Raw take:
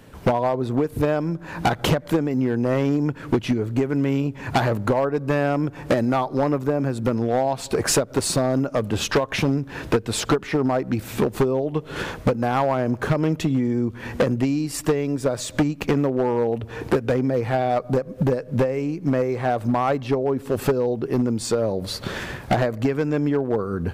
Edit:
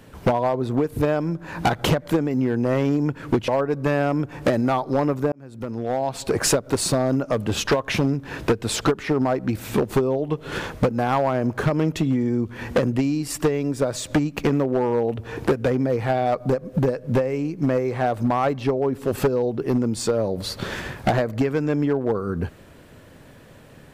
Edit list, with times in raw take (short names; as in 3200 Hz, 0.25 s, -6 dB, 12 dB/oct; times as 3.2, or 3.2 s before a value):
3.48–4.92 cut
6.76–7.67 fade in